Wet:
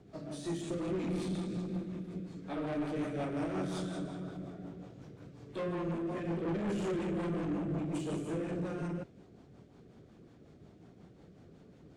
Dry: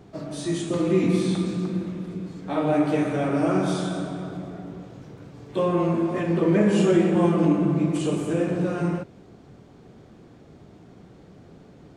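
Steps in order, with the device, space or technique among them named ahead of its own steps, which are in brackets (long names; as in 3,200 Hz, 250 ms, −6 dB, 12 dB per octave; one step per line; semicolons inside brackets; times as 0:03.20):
overdriven rotary cabinet (tube saturation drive 24 dB, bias 0.3; rotating-speaker cabinet horn 5.5 Hz)
level −6 dB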